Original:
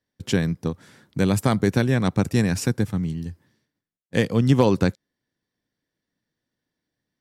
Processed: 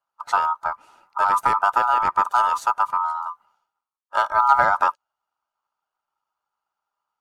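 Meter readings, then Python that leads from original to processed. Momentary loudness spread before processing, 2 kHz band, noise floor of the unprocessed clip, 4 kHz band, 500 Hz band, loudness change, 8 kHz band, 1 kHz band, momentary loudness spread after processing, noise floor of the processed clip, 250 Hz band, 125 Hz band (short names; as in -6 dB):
12 LU, +5.0 dB, -85 dBFS, -6.0 dB, -7.5 dB, +2.0 dB, n/a, +16.5 dB, 12 LU, under -85 dBFS, under -25 dB, under -25 dB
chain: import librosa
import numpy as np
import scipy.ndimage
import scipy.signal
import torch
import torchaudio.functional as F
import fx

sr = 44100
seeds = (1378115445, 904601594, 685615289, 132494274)

y = fx.spec_quant(x, sr, step_db=15)
y = fx.low_shelf(y, sr, hz=420.0, db=11.0)
y = y * np.sin(2.0 * np.pi * 1100.0 * np.arange(len(y)) / sr)
y = y * librosa.db_to_amplitude(-4.5)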